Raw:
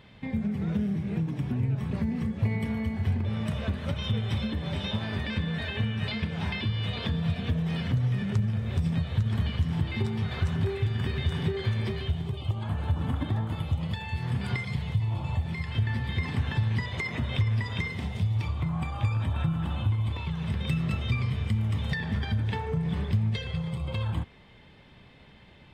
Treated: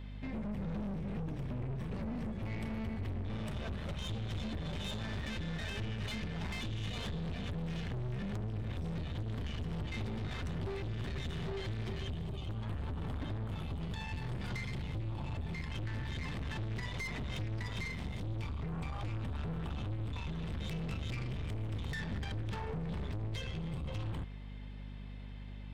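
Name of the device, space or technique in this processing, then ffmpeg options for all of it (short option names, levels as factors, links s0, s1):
valve amplifier with mains hum: -af "aeval=exprs='(tanh(56.2*val(0)+0.4)-tanh(0.4))/56.2':c=same,aeval=exprs='val(0)+0.00794*(sin(2*PI*50*n/s)+sin(2*PI*2*50*n/s)/2+sin(2*PI*3*50*n/s)/3+sin(2*PI*4*50*n/s)/4+sin(2*PI*5*50*n/s)/5)':c=same,volume=0.794"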